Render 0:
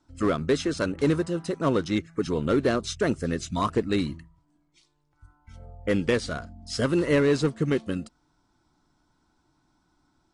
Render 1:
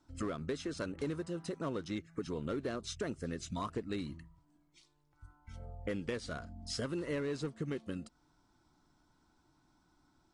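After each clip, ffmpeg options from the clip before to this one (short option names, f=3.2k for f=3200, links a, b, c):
-af "acompressor=threshold=-36dB:ratio=3,volume=-2.5dB"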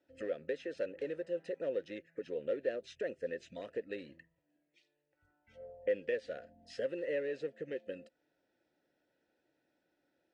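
-filter_complex "[0:a]asplit=3[a][b][c];[a]bandpass=f=530:t=q:w=8,volume=0dB[d];[b]bandpass=f=1.84k:t=q:w=8,volume=-6dB[e];[c]bandpass=f=2.48k:t=q:w=8,volume=-9dB[f];[d][e][f]amix=inputs=3:normalize=0,volume=10.5dB"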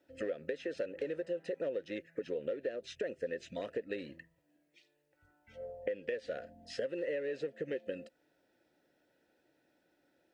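-af "acompressor=threshold=-38dB:ratio=12,volume=5.5dB"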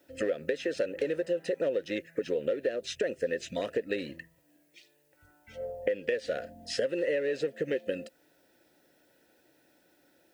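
-af "crystalizer=i=1.5:c=0,volume=7dB"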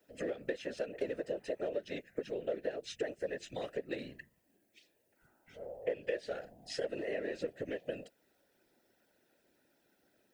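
-af "afftfilt=real='hypot(re,im)*cos(2*PI*random(0))':imag='hypot(re,im)*sin(2*PI*random(1))':win_size=512:overlap=0.75,volume=-1.5dB"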